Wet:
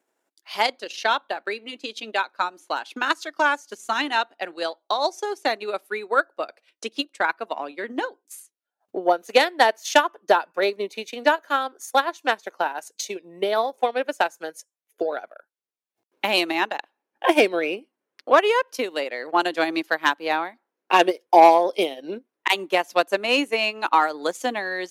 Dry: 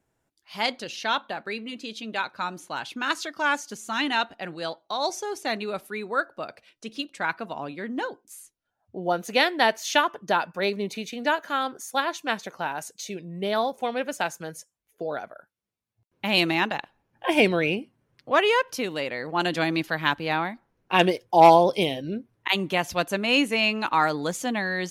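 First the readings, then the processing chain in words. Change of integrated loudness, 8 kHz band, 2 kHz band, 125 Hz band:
+2.5 dB, +0.5 dB, +2.0 dB, under -15 dB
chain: in parallel at -6 dB: overloaded stage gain 10.5 dB; on the sum: transient shaper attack +8 dB, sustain -9 dB; soft clip -1.5 dBFS, distortion -19 dB; dynamic EQ 2900 Hz, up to -4 dB, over -29 dBFS, Q 0.74; HPF 300 Hz 24 dB/oct; gain -1.5 dB

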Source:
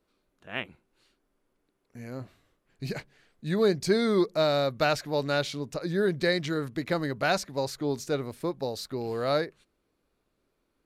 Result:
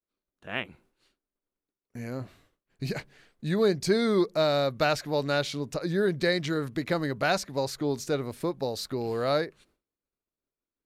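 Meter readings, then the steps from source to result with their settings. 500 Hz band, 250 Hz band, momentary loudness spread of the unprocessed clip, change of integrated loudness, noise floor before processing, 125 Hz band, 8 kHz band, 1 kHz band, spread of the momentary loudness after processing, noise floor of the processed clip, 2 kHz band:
+0.5 dB, +0.5 dB, 15 LU, 0.0 dB, -76 dBFS, +1.0 dB, +1.0 dB, +0.5 dB, 13 LU, under -85 dBFS, +0.5 dB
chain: expander -60 dBFS; in parallel at +1 dB: compressor, threshold -38 dBFS, peak gain reduction 18 dB; on the sum: gain -1.5 dB

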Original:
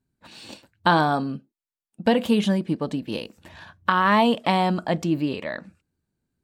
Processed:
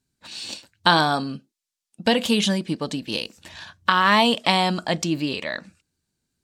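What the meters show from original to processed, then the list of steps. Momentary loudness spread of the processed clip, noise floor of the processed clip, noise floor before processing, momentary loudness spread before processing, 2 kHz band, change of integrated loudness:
17 LU, under -85 dBFS, under -85 dBFS, 16 LU, +3.5 dB, +1.5 dB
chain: bell 5900 Hz +14 dB 2.6 oct; gain -1.5 dB

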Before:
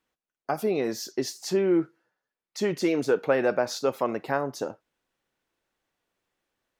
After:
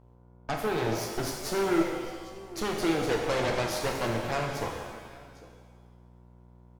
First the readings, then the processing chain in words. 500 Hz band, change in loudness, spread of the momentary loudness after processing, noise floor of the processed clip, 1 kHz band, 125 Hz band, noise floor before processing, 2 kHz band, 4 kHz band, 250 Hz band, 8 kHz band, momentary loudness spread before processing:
-4.0 dB, -3.0 dB, 15 LU, -55 dBFS, +0.5 dB, +3.5 dB, under -85 dBFS, +0.5 dB, +1.5 dB, -3.0 dB, 0.0 dB, 12 LU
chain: soft clip -17 dBFS, distortion -17 dB; buzz 60 Hz, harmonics 17, -52 dBFS -5 dB/oct; on a send: echo 0.801 s -17.5 dB; on the sum: added harmonics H 6 -9 dB, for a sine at -16.5 dBFS; shimmer reverb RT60 1.4 s, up +7 st, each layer -8 dB, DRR 1 dB; gain -6 dB

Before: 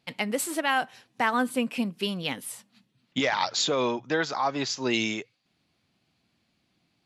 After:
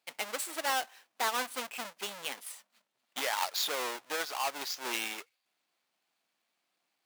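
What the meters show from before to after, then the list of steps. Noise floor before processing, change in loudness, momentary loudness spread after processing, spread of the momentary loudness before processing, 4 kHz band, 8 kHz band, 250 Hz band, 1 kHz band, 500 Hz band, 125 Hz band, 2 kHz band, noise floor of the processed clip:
-73 dBFS, -6.5 dB, 12 LU, 10 LU, -5.0 dB, -3.0 dB, -19.5 dB, -6.0 dB, -10.5 dB, under -25 dB, -6.5 dB, -82 dBFS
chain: half-waves squared off; HPF 690 Hz 12 dB/oct; gain -8.5 dB

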